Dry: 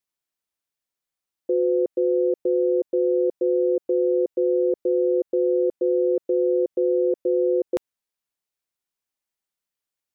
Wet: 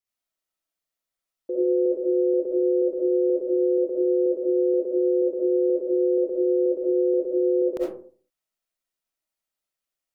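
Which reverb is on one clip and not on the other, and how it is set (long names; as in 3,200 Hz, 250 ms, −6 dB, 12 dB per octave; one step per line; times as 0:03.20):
comb and all-pass reverb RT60 0.45 s, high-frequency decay 0.4×, pre-delay 25 ms, DRR −6 dB
level −6.5 dB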